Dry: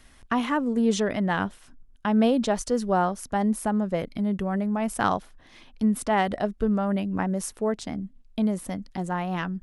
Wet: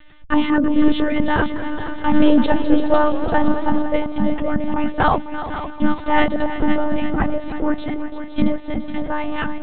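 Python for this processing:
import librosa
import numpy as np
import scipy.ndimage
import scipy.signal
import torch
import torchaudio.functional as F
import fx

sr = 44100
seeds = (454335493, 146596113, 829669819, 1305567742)

y = x + 0.47 * np.pad(x, (int(3.8 * sr / 1000.0), 0))[:len(x)]
y = fx.echo_heads(y, sr, ms=169, heads='second and third', feedback_pct=57, wet_db=-11.5)
y = fx.lpc_monotone(y, sr, seeds[0], pitch_hz=300.0, order=16)
y = fx.echo_warbled(y, sr, ms=210, feedback_pct=56, rate_hz=2.8, cents=163, wet_db=-14.0, at=(1.35, 3.79))
y = F.gain(torch.from_numpy(y), 7.0).numpy()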